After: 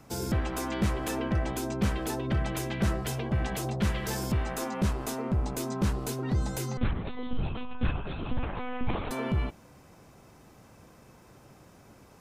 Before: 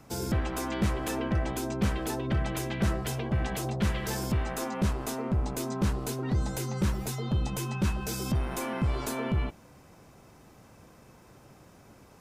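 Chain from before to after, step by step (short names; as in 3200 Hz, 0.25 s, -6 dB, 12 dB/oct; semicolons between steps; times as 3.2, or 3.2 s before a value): 6.77–9.11 monotone LPC vocoder at 8 kHz 250 Hz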